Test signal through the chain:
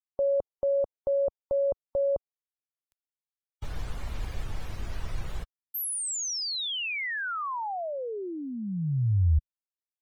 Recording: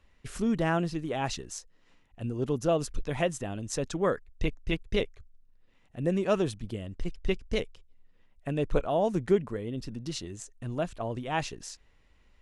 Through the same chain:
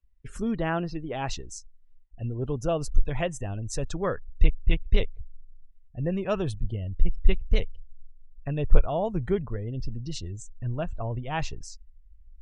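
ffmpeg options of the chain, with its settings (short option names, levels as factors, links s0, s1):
-af "afftdn=nr=26:nf=-47,asubboost=boost=6:cutoff=100"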